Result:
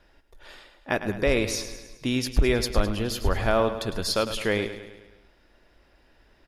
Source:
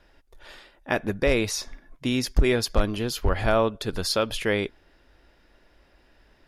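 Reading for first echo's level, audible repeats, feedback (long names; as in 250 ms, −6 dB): −11.5 dB, 5, 56%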